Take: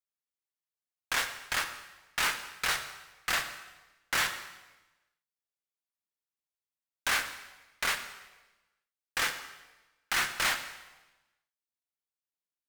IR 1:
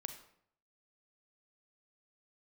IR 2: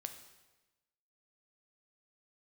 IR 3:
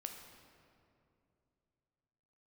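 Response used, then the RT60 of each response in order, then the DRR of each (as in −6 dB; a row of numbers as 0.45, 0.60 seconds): 2; 0.65, 1.1, 2.7 seconds; 7.5, 6.5, 3.5 decibels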